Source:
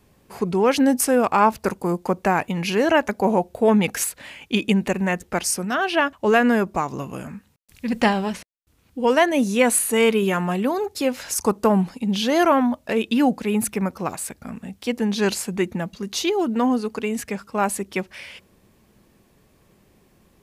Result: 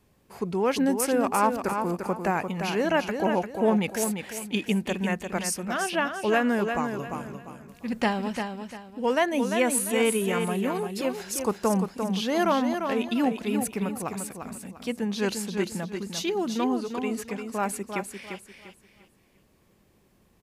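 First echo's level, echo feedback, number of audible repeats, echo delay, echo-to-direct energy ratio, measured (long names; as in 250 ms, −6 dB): −6.5 dB, 30%, 3, 347 ms, −6.0 dB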